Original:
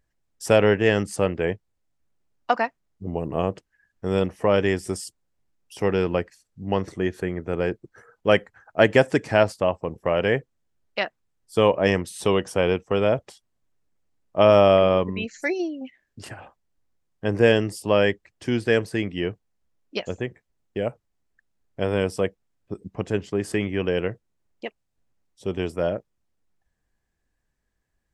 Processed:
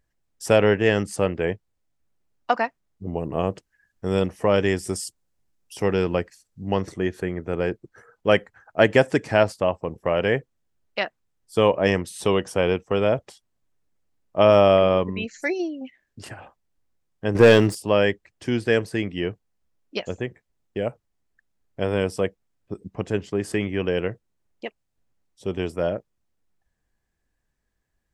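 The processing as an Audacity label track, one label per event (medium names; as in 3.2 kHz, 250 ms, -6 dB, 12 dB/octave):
3.450000	6.940000	tone controls bass +1 dB, treble +4 dB
17.350000	17.750000	waveshaping leveller passes 2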